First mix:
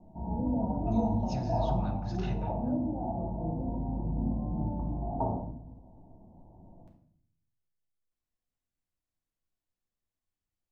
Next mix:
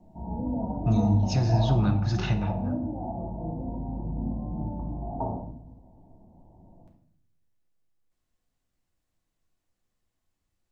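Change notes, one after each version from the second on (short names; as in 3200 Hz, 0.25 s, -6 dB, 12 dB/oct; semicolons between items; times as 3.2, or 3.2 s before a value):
speech +12.0 dB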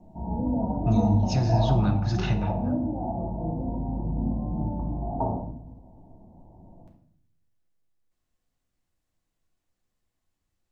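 background +3.5 dB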